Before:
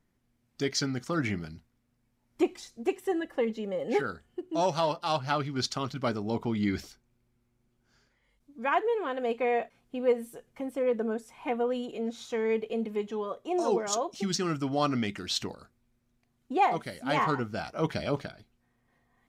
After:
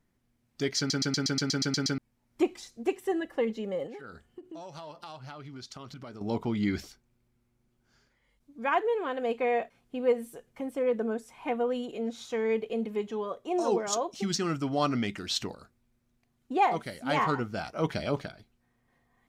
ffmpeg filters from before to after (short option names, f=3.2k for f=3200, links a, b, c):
-filter_complex "[0:a]asettb=1/sr,asplit=3[a][b][c];[a]atrim=end=3.864[d];[b]atrim=start=3.86:end=6.21,asetpts=PTS-STARTPTS,afade=t=in:d=0.004:c=qsin,afade=t=out:st=2.346:d=0.004:c=qsin,acompressor=threshold=-40dB:ratio=10:attack=3.2:release=140:knee=1:detection=peak[e];[c]atrim=start=6.206[f];[d][e]acrossfade=d=0.004:c1=hsin:c2=qsin[g];[g][f]acrossfade=d=0.004:c1=qsin:c2=hsin,asplit=11[h][i][j][k][l][m][n][o][p][q][r];[h]atrim=end=0.902[s];[i]atrim=start=0.778:end=0.902[t];[j]atrim=start=0.778:end=0.902[u];[k]atrim=start=0.778:end=0.902[v];[l]atrim=start=0.778:end=0.902[w];[m]atrim=start=0.778:end=0.902[x];[n]atrim=start=0.778:end=0.902[y];[o]atrim=start=0.778:end=0.902[z];[p]atrim=start=0.778:end=0.902[aa];[q]atrim=start=0.778:end=0.902[ab];[r]atrim=start=1.978[ac];[s][t]acrossfade=d=0.004:c1=hsin:c2=hsin[ad];[ad][u]acrossfade=d=0.004:c1=hsin:c2=hsin[ae];[ae][v]acrossfade=d=0.004:c1=hsin:c2=hsin[af];[af][w]acrossfade=d=0.004:c1=hsin:c2=hsin[ag];[ag][x]acrossfade=d=0.004:c1=hsin:c2=hsin[ah];[ah][y]acrossfade=d=0.004:c1=hsin:c2=hsin[ai];[ai][z]acrossfade=d=0.004:c1=hsin:c2=hsin[aj];[aj][aa]acrossfade=d=0.004:c1=hsin:c2=hsin[ak];[ak][ab]acrossfade=d=0.004:c1=hsin:c2=hsin[al];[al][ac]acrossfade=d=0.004:c1=hsin:c2=hsin"